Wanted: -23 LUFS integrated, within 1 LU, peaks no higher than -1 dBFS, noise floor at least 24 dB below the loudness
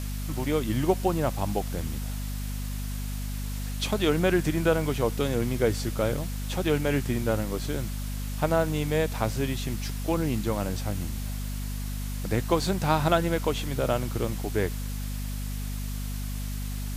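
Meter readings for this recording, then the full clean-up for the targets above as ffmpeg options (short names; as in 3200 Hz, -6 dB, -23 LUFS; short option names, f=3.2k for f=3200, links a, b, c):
hum 50 Hz; harmonics up to 250 Hz; hum level -30 dBFS; noise floor -32 dBFS; noise floor target -53 dBFS; loudness -28.5 LUFS; peak -9.0 dBFS; loudness target -23.0 LUFS
-> -af "bandreject=f=50:t=h:w=6,bandreject=f=100:t=h:w=6,bandreject=f=150:t=h:w=6,bandreject=f=200:t=h:w=6,bandreject=f=250:t=h:w=6"
-af "afftdn=nr=21:nf=-32"
-af "volume=5.5dB"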